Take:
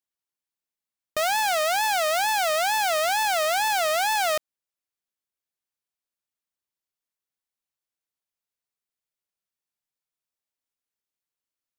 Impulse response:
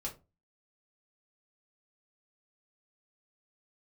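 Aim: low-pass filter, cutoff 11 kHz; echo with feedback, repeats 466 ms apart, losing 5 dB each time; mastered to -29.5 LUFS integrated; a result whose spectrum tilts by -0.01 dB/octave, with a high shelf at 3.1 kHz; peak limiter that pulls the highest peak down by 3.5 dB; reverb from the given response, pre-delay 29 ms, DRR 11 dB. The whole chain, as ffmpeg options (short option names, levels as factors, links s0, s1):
-filter_complex "[0:a]lowpass=11000,highshelf=f=3100:g=3.5,alimiter=limit=0.133:level=0:latency=1,aecho=1:1:466|932|1398|1864|2330|2796|3262:0.562|0.315|0.176|0.0988|0.0553|0.031|0.0173,asplit=2[s0][s1];[1:a]atrim=start_sample=2205,adelay=29[s2];[s1][s2]afir=irnorm=-1:irlink=0,volume=0.299[s3];[s0][s3]amix=inputs=2:normalize=0,volume=0.531"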